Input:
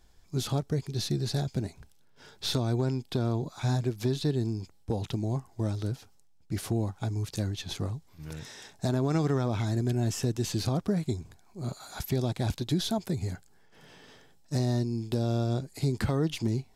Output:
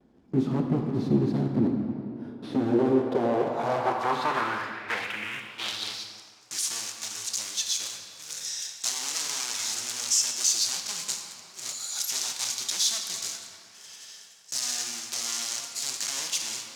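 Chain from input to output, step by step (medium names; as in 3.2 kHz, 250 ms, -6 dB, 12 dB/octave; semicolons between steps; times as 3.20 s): block-companded coder 3-bit; gate with hold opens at -55 dBFS; bass shelf 110 Hz -11.5 dB; sine folder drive 14 dB, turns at -12.5 dBFS; 1.56–2.53 s: careless resampling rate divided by 3×, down filtered, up hold; 5.04–5.51 s: static phaser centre 1.8 kHz, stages 4; reverberation RT60 3.1 s, pre-delay 14 ms, DRR 2.5 dB; band-pass sweep 250 Hz -> 6.4 kHz, 2.43–6.43 s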